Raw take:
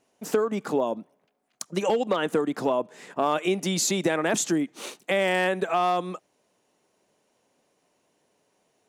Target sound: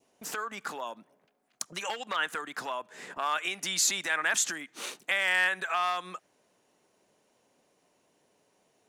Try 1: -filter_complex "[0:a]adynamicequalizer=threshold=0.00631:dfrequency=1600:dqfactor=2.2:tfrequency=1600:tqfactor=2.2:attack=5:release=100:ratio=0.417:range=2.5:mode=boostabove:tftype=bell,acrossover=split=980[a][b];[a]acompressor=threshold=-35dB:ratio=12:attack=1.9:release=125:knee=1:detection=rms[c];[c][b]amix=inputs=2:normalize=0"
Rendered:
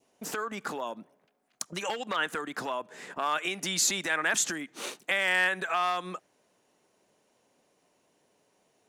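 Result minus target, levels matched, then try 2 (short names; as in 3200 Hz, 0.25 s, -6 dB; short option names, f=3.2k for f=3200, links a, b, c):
compressor: peak gain reduction -8 dB
-filter_complex "[0:a]adynamicequalizer=threshold=0.00631:dfrequency=1600:dqfactor=2.2:tfrequency=1600:tqfactor=2.2:attack=5:release=100:ratio=0.417:range=2.5:mode=boostabove:tftype=bell,acrossover=split=980[a][b];[a]acompressor=threshold=-43.5dB:ratio=12:attack=1.9:release=125:knee=1:detection=rms[c];[c][b]amix=inputs=2:normalize=0"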